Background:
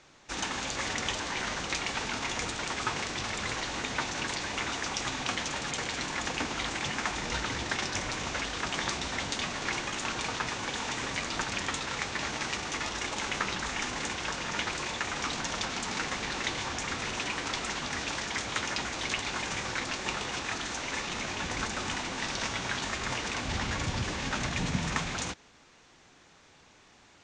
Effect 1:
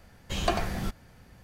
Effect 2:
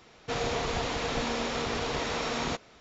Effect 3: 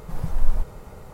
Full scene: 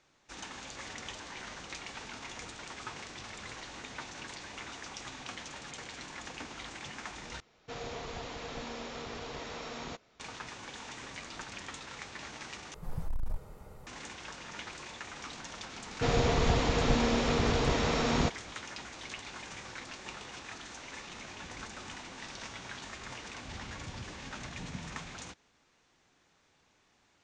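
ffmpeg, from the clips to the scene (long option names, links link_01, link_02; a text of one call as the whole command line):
ffmpeg -i bed.wav -i cue0.wav -i cue1.wav -i cue2.wav -filter_complex "[2:a]asplit=2[link_01][link_02];[0:a]volume=-11dB[link_03];[3:a]asoftclip=type=hard:threshold=-18dB[link_04];[link_02]lowshelf=frequency=290:gain=10[link_05];[link_03]asplit=3[link_06][link_07][link_08];[link_06]atrim=end=7.404[link_09];[link_01]atrim=end=2.8,asetpts=PTS-STARTPTS,volume=-10.5dB[link_10];[link_07]atrim=start=10.196:end=12.744[link_11];[link_04]atrim=end=1.13,asetpts=PTS-STARTPTS,volume=-9dB[link_12];[link_08]atrim=start=13.866[link_13];[link_05]atrim=end=2.8,asetpts=PTS-STARTPTS,volume=-0.5dB,afade=type=in:duration=0.004:curve=hsin,afade=type=out:start_time=2.796:duration=0.004:curve=hsin,adelay=15730[link_14];[link_09][link_10]acrossfade=duration=0.004:curve1=hsin:curve2=hsin[link_15];[link_15][link_11]acrossfade=duration=0.004:curve1=hsin:curve2=hsin[link_16];[link_16][link_12]acrossfade=duration=0.004:curve1=hsin:curve2=hsin[link_17];[link_17][link_13]acrossfade=duration=0.004:curve1=hsin:curve2=hsin[link_18];[link_18][link_14]amix=inputs=2:normalize=0" out.wav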